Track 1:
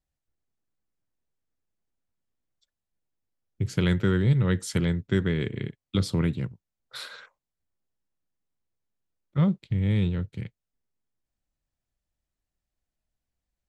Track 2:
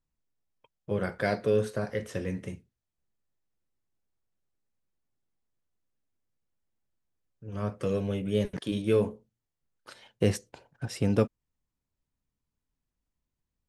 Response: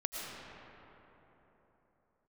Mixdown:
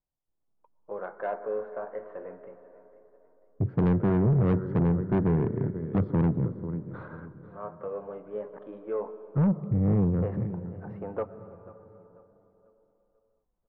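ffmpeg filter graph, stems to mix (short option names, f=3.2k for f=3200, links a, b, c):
-filter_complex "[0:a]equalizer=f=63:w=1.1:g=-8,volume=-4.5dB,asplit=3[a][b][c];[b]volume=-18dB[d];[c]volume=-14dB[e];[1:a]highpass=800,volume=-6.5dB,asplit=3[f][g][h];[g]volume=-13dB[i];[h]volume=-17dB[j];[2:a]atrim=start_sample=2205[k];[d][i]amix=inputs=2:normalize=0[l];[l][k]afir=irnorm=-1:irlink=0[m];[e][j]amix=inputs=2:normalize=0,aecho=0:1:492|984|1476|1968|2460:1|0.33|0.109|0.0359|0.0119[n];[a][f][m][n]amix=inputs=4:normalize=0,lowpass=f=1.1k:w=0.5412,lowpass=f=1.1k:w=1.3066,dynaudnorm=f=130:g=7:m=10dB,asoftclip=type=tanh:threshold=-19dB"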